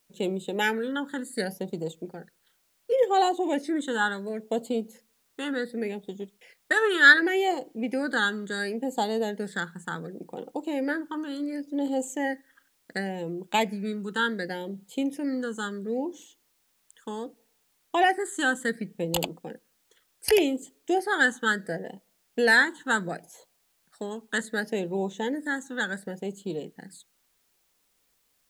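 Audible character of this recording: phasing stages 8, 0.69 Hz, lowest notch 670–1700 Hz; a quantiser's noise floor 12-bit, dither triangular

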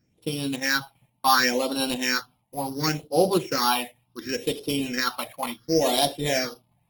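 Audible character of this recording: a buzz of ramps at a fixed pitch in blocks of 8 samples; phasing stages 6, 0.7 Hz, lowest notch 380–1900 Hz; Opus

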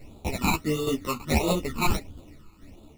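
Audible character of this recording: aliases and images of a low sample rate 1.6 kHz, jitter 0%; phasing stages 12, 1.5 Hz, lowest notch 580–1900 Hz; tremolo saw down 2.3 Hz, depth 60%; a shimmering, thickened sound

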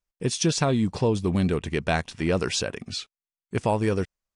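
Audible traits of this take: noise floor -96 dBFS; spectral tilt -5.0 dB/octave

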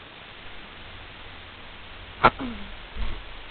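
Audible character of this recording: a quantiser's noise floor 6-bit, dither triangular; G.726

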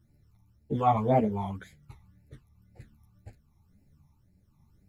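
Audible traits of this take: phasing stages 12, 1.9 Hz, lowest notch 490–1100 Hz; tremolo triangle 1.1 Hz, depth 35%; a shimmering, thickened sound

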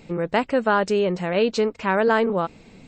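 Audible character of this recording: noise floor -49 dBFS; spectral tilt -4.0 dB/octave

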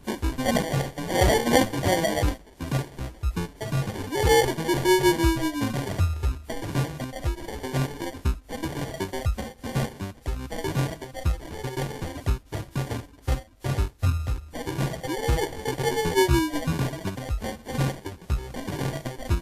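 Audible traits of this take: phasing stages 8, 2.7 Hz, lowest notch 190–1100 Hz; aliases and images of a low sample rate 1.3 kHz, jitter 0%; WMA

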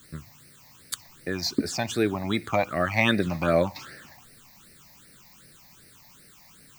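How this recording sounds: a quantiser's noise floor 10-bit, dither triangular; phasing stages 8, 2.6 Hz, lowest notch 400–1000 Hz

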